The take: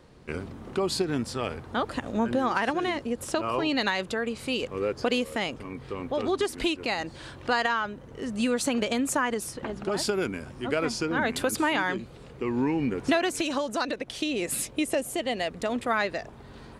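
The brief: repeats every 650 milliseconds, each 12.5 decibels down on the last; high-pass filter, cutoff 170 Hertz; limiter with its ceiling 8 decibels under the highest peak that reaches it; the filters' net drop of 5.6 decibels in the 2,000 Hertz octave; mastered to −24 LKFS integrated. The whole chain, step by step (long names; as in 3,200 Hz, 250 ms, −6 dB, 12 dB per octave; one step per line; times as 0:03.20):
high-pass filter 170 Hz
parametric band 2,000 Hz −7.5 dB
brickwall limiter −20 dBFS
repeating echo 650 ms, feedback 24%, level −12.5 dB
level +7 dB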